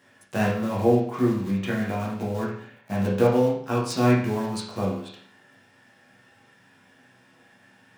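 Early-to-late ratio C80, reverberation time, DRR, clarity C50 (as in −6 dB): 8.0 dB, 0.60 s, −6.5 dB, 3.5 dB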